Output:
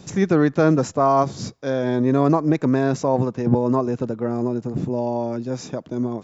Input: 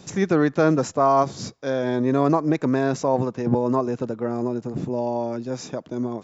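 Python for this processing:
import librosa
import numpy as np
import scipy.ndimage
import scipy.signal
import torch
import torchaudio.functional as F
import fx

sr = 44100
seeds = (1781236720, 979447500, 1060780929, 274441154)

y = fx.low_shelf(x, sr, hz=250.0, db=5.5)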